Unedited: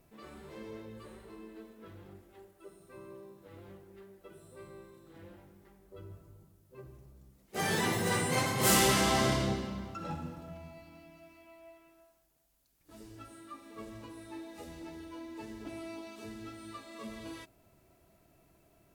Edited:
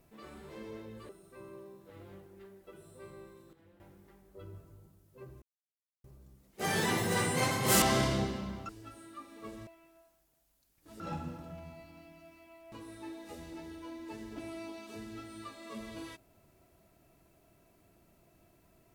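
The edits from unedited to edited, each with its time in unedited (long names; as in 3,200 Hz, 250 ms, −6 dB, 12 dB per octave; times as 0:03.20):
0:01.09–0:02.66: remove
0:05.10–0:05.37: clip gain −11 dB
0:06.99: splice in silence 0.62 s
0:08.77–0:09.11: remove
0:09.98–0:11.70: swap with 0:13.03–0:14.01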